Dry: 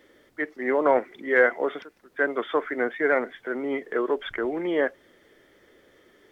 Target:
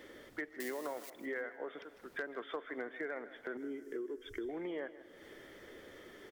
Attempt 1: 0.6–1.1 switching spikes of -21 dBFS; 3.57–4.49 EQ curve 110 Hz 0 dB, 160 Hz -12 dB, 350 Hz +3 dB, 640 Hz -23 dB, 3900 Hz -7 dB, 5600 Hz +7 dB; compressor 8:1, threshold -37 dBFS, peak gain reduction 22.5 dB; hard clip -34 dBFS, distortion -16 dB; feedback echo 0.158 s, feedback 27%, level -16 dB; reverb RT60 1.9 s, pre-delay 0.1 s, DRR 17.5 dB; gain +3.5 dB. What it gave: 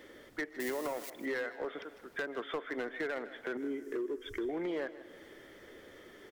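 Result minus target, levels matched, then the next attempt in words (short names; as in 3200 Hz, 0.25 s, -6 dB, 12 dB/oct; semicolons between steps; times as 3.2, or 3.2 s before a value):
compressor: peak gain reduction -5 dB
0.6–1.1 switching spikes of -21 dBFS; 3.57–4.49 EQ curve 110 Hz 0 dB, 160 Hz -12 dB, 350 Hz +3 dB, 640 Hz -23 dB, 3900 Hz -7 dB, 5600 Hz +7 dB; compressor 8:1, threshold -43 dBFS, peak gain reduction 27.5 dB; hard clip -34 dBFS, distortion -29 dB; feedback echo 0.158 s, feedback 27%, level -16 dB; reverb RT60 1.9 s, pre-delay 0.1 s, DRR 17.5 dB; gain +3.5 dB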